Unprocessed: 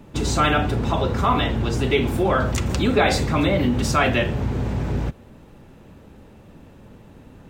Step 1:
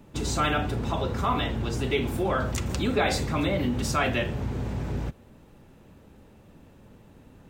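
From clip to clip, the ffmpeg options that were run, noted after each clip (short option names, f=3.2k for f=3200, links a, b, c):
-af "highshelf=f=6.4k:g=4.5,volume=-6.5dB"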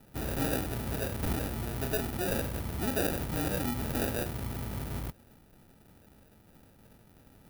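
-af "acrusher=samples=41:mix=1:aa=0.000001,aexciter=amount=3.9:drive=3.3:freq=9.7k,volume=-6.5dB"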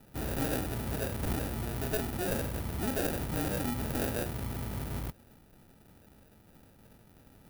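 -af "aeval=exprs='clip(val(0),-1,0.0335)':c=same"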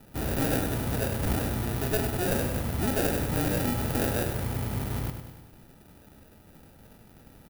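-af "aecho=1:1:100|200|300|400|500|600|700:0.376|0.21|0.118|0.066|0.037|0.0207|0.0116,volume=4.5dB"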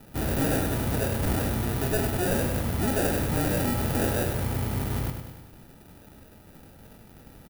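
-filter_complex "[0:a]asoftclip=type=tanh:threshold=-20dB,asplit=2[a][b];[b]adelay=22,volume=-14dB[c];[a][c]amix=inputs=2:normalize=0,volume=3dB"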